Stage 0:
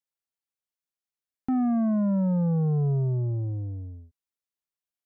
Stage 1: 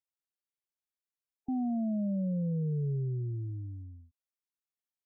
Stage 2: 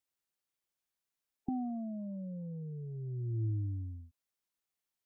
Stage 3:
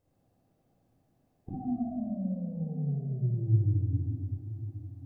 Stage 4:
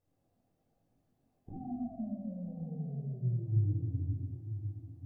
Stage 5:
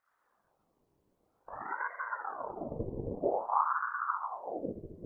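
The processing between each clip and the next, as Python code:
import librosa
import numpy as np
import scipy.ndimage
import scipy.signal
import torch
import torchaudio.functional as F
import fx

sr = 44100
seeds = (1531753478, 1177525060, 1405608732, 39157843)

y1 = fx.spec_gate(x, sr, threshold_db=-20, keep='strong')
y1 = F.gain(torch.from_numpy(y1), -7.5).numpy()
y2 = fx.dynamic_eq(y1, sr, hz=270.0, q=3.8, threshold_db=-47.0, ratio=4.0, max_db=-5)
y2 = fx.over_compress(y2, sr, threshold_db=-36.0, ratio=-0.5)
y3 = fx.bin_compress(y2, sr, power=0.6)
y3 = y3 + 10.0 ** (-16.5 / 20.0) * np.pad(y3, (int(1084 * sr / 1000.0), 0))[:len(y3)]
y3 = fx.room_shoebox(y3, sr, seeds[0], volume_m3=2700.0, walls='mixed', distance_m=5.2)
y3 = F.gain(torch.from_numpy(y3), -5.5).numpy()
y4 = fx.chorus_voices(y3, sr, voices=4, hz=0.94, base_ms=21, depth_ms=3.0, mix_pct=45)
y4 = y4 + 10.0 ** (-16.0 / 20.0) * np.pad(y4, (int(946 * sr / 1000.0), 0))[:len(y4)]
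y4 = F.gain(torch.from_numpy(y4), -2.5).numpy()
y5 = fx.whisperise(y4, sr, seeds[1])
y5 = fx.doubler(y5, sr, ms=20.0, db=-12)
y5 = fx.ring_lfo(y5, sr, carrier_hz=770.0, swing_pct=70, hz=0.51)
y5 = F.gain(torch.from_numpy(y5), 3.5).numpy()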